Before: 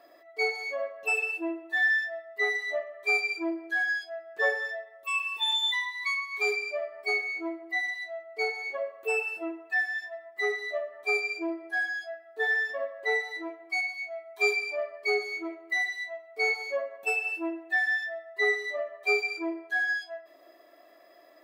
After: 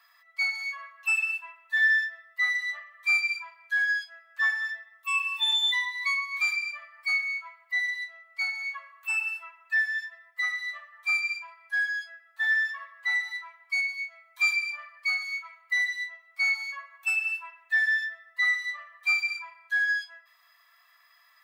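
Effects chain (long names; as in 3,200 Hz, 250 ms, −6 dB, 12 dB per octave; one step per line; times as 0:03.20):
Butterworth high-pass 990 Hz 48 dB per octave
level +2.5 dB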